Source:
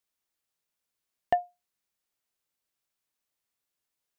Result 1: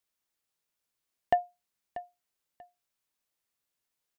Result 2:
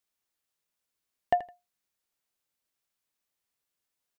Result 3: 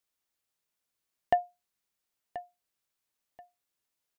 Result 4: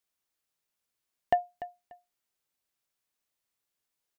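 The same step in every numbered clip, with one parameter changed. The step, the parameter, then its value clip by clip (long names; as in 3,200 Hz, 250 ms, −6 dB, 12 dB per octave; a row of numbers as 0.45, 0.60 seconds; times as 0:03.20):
repeating echo, delay time: 638, 81, 1,032, 293 milliseconds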